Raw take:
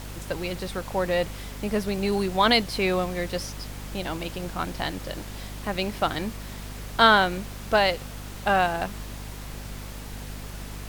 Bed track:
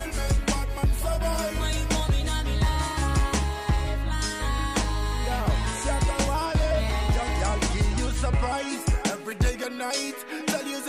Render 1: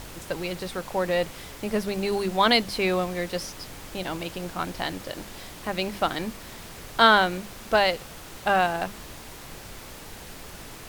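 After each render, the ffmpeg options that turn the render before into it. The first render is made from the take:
-af "bandreject=f=50:t=h:w=6,bandreject=f=100:t=h:w=6,bandreject=f=150:t=h:w=6,bandreject=f=200:t=h:w=6,bandreject=f=250:t=h:w=6"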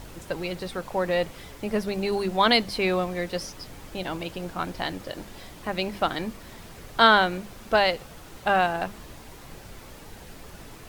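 -af "afftdn=nr=6:nf=-43"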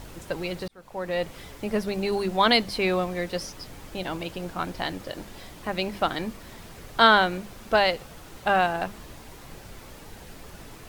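-filter_complex "[0:a]asplit=2[a][b];[a]atrim=end=0.68,asetpts=PTS-STARTPTS,afade=t=out:st=0.676:d=0.004:c=hsin[c];[b]atrim=start=0.68,asetpts=PTS-STARTPTS,afade=t=in:d=0.68[d];[c][d]concat=n=2:v=0:a=1"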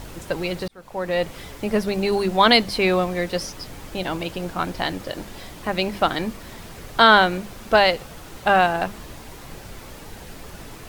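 -af "volume=5dB,alimiter=limit=-2dB:level=0:latency=1"

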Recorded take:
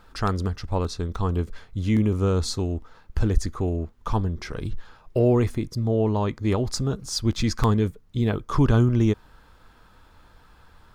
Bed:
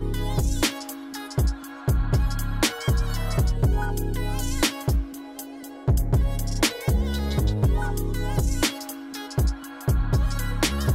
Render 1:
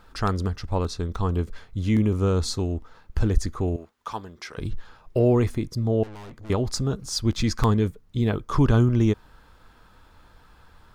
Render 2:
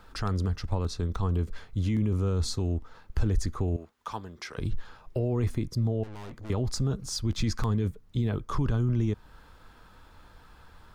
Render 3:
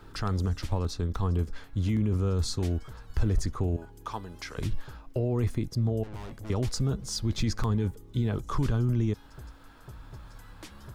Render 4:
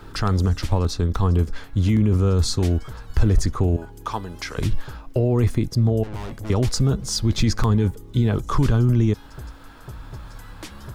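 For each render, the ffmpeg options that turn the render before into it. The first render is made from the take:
-filter_complex "[0:a]asettb=1/sr,asplit=3[a][b][c];[a]atrim=end=3.764[d];[b]atrim=start=3.76:end=4.58,asetpts=PTS-STARTPTS,afade=t=in:d=0.004:c=qsin,afade=t=out:st=0.816:d=0.004:c=qsin,highpass=f=950:p=1[e];[c]atrim=start=4.576[f];[d][e]acrossfade=d=0.004:c1=hsin:c2=qsin[g];[g][f]acrossfade=d=0.004:c1=qsin:c2=hsin,asettb=1/sr,asplit=3[h][i][j];[h]atrim=end=6.034[k];[i]atrim=start=6.03:end=6.5,asetpts=PTS-STARTPTS,afade=t=in:d=0.004:c=qsin,afade=t=out:st=0.466:d=0.004:c=qsin,aeval=exprs='(tanh(100*val(0)+0.45)-tanh(0.45))/100':c=same[l];[j]atrim=start=6.496[m];[k][l]acrossfade=d=0.004:c1=hsin:c2=qsin[n];[n][m]acrossfade=d=0.004:c1=qsin:c2=hsin"
-filter_complex "[0:a]alimiter=limit=-17.5dB:level=0:latency=1:release=10,acrossover=split=190[a][b];[b]acompressor=threshold=-39dB:ratio=1.5[c];[a][c]amix=inputs=2:normalize=0"
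-filter_complex "[1:a]volume=-24dB[a];[0:a][a]amix=inputs=2:normalize=0"
-af "volume=8.5dB"

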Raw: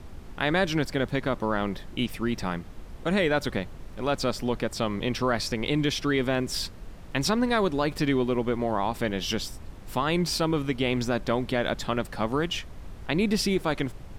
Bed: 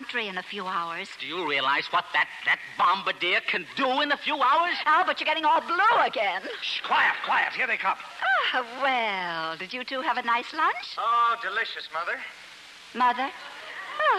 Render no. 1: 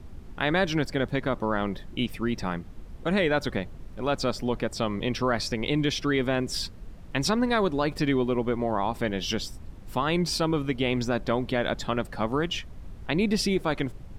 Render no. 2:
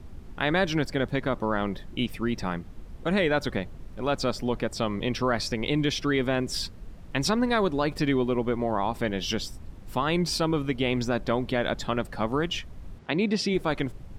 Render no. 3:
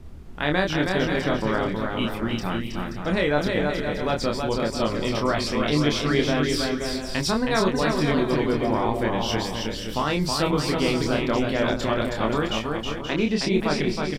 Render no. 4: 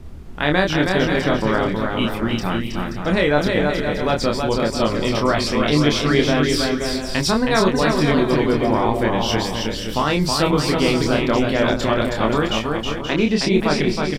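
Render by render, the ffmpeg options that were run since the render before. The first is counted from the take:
-af "afftdn=nr=6:nf=-43"
-filter_complex "[0:a]asplit=3[a][b][c];[a]afade=t=out:st=12.98:d=0.02[d];[b]highpass=150,lowpass=6k,afade=t=in:st=12.98:d=0.02,afade=t=out:st=13.53:d=0.02[e];[c]afade=t=in:st=13.53:d=0.02[f];[d][e][f]amix=inputs=3:normalize=0"
-filter_complex "[0:a]asplit=2[a][b];[b]adelay=27,volume=-3.5dB[c];[a][c]amix=inputs=2:normalize=0,asplit=2[d][e];[e]aecho=0:1:320|528|663.2|751.1|808.2:0.631|0.398|0.251|0.158|0.1[f];[d][f]amix=inputs=2:normalize=0"
-af "volume=5dB"

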